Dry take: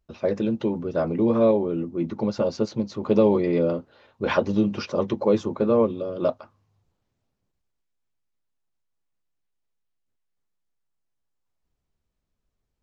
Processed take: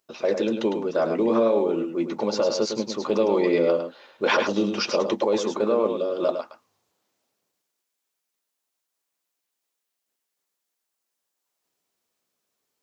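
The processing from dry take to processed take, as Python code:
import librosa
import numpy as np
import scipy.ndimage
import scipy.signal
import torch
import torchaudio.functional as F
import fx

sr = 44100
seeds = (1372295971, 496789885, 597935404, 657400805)

p1 = scipy.signal.sosfilt(scipy.signal.butter(2, 350.0, 'highpass', fs=sr, output='sos'), x)
p2 = fx.high_shelf(p1, sr, hz=4400.0, db=9.5)
p3 = fx.over_compress(p2, sr, threshold_db=-24.0, ratio=-0.5)
p4 = p2 + (p3 * librosa.db_to_amplitude(2.0))
p5 = p4 + 10.0 ** (-7.0 / 20.0) * np.pad(p4, (int(105 * sr / 1000.0), 0))[:len(p4)]
y = p5 * librosa.db_to_amplitude(-4.0)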